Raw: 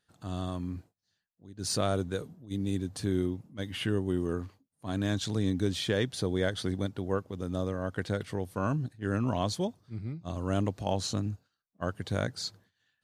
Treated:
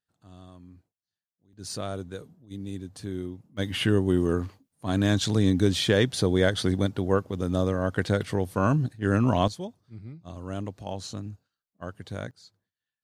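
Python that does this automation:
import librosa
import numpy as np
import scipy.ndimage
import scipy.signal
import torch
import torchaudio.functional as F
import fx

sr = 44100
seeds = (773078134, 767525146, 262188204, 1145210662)

y = fx.gain(x, sr, db=fx.steps((0.0, -13.5), (1.53, -4.5), (3.57, 7.0), (9.48, -4.5), (12.31, -16.5)))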